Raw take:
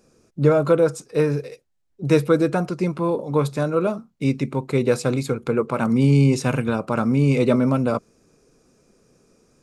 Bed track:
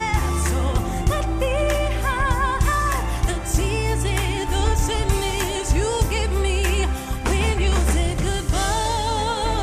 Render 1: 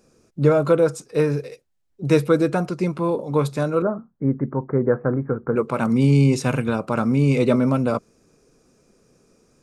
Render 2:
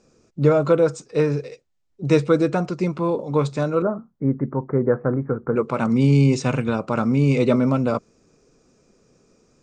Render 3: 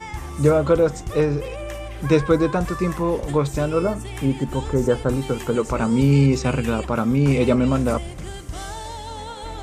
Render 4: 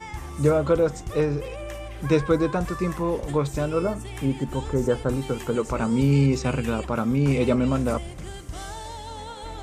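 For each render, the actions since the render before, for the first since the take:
3.82–5.56 s: steep low-pass 1.8 kHz 72 dB/octave
steep low-pass 8 kHz 48 dB/octave; band-stop 1.6 kHz, Q 23
add bed track -11 dB
trim -3.5 dB

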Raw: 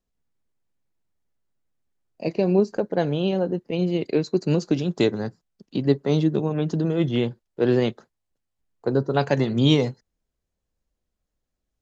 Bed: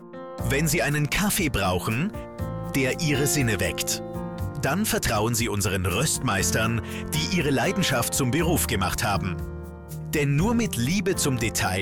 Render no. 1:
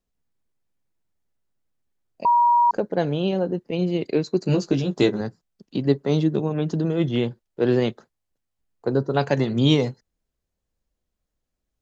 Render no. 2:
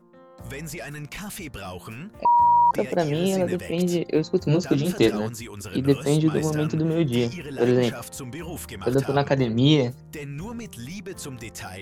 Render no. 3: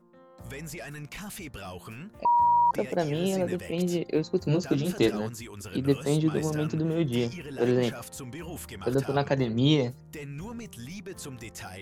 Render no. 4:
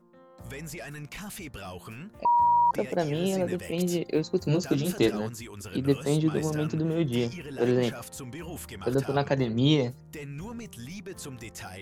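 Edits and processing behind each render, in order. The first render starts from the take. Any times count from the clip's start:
2.25–2.71 s: bleep 955 Hz -13.5 dBFS; 4.44–5.21 s: doubling 15 ms -3.5 dB
add bed -12 dB
trim -4.5 dB
3.62–4.96 s: treble shelf 6.2 kHz +7 dB

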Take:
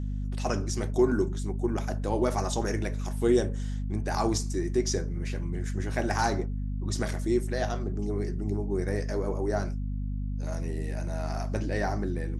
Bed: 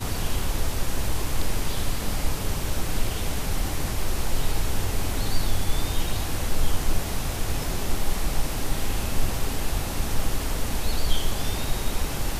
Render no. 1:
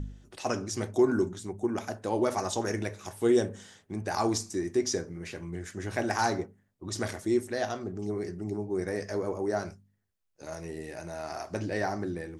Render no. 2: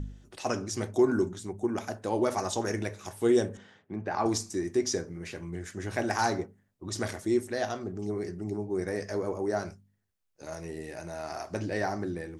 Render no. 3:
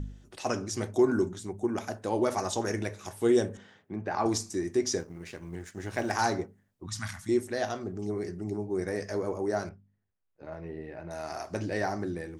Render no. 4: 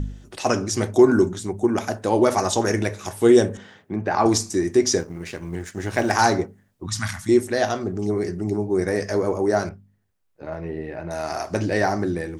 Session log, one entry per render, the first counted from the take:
de-hum 50 Hz, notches 5
3.57–4.26 s: band-pass 110–2500 Hz
5.00–6.13 s: companding laws mixed up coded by A; 6.86–7.29 s: Chebyshev band-stop 170–1100 Hz; 9.69–11.11 s: distance through air 440 m
trim +9.5 dB

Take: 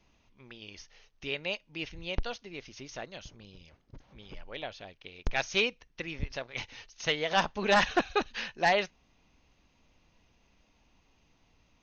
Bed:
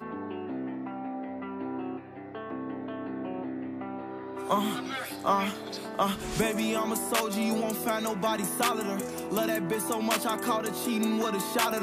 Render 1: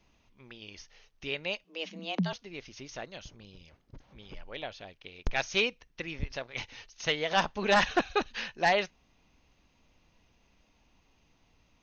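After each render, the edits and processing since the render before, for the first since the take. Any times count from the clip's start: 1.64–2.33 s: frequency shift +160 Hz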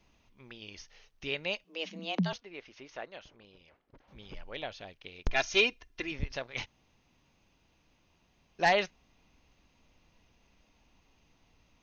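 2.40–4.08 s: tone controls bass -13 dB, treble -15 dB; 5.31–6.12 s: comb 2.9 ms; 6.66–8.59 s: room tone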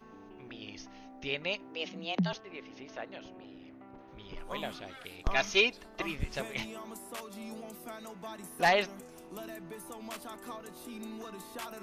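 add bed -15.5 dB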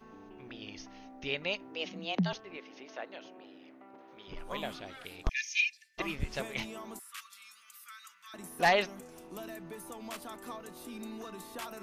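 2.58–4.28 s: high-pass 300 Hz; 5.29–5.98 s: rippled Chebyshev high-pass 1.7 kHz, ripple 9 dB; 6.99–8.34 s: elliptic high-pass 1.2 kHz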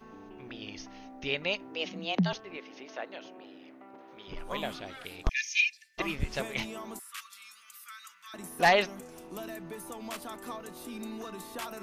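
trim +3 dB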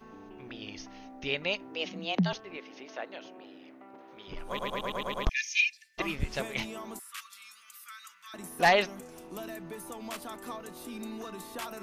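4.48 s: stutter in place 0.11 s, 7 plays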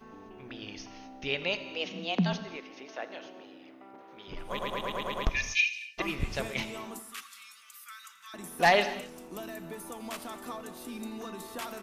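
feedback delay 83 ms, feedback 41%, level -19 dB; gated-style reverb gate 270 ms flat, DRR 11 dB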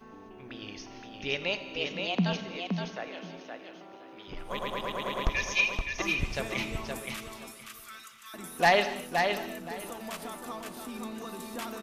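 feedback delay 520 ms, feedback 19%, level -5 dB

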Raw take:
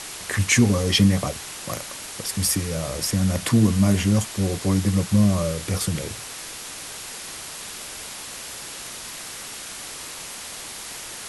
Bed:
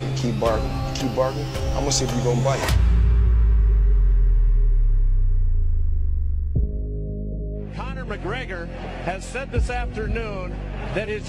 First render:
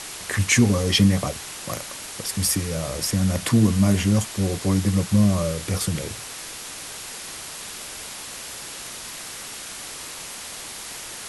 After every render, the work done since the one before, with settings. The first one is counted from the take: no audible change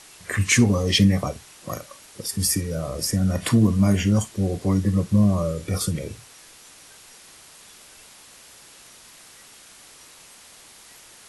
noise print and reduce 12 dB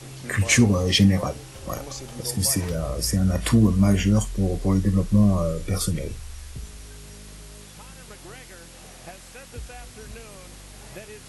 add bed -15.5 dB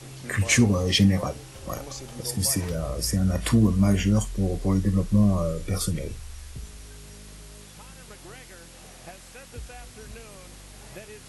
trim -2 dB

